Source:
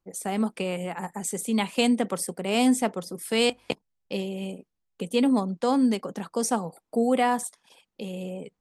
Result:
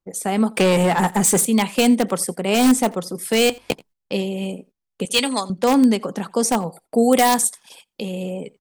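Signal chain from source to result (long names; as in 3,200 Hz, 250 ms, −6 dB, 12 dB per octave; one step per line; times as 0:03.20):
0:05.05–0:05.50: meter weighting curve ITU-R 468
in parallel at −7 dB: wrap-around overflow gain 14 dB
0:00.53–0:01.45: on the sum: leveller curve on the samples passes 3
0:06.98–0:08.02: high-shelf EQ 3,300 Hz +9 dB
on a send: single-tap delay 85 ms −24 dB
on the sum: noise gate −50 dBFS, range −11 dB
level +4 dB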